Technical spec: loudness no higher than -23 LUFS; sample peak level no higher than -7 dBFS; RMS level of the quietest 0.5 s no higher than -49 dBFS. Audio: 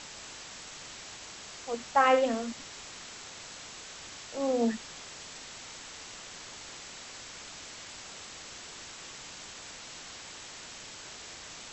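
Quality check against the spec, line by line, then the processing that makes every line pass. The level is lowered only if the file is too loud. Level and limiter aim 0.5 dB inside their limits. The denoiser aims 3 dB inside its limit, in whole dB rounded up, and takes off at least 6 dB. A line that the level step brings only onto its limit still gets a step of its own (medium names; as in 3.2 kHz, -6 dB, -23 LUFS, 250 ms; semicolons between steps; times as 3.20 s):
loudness -35.5 LUFS: pass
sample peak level -11.0 dBFS: pass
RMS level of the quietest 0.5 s -46 dBFS: fail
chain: noise reduction 6 dB, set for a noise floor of -46 dBFS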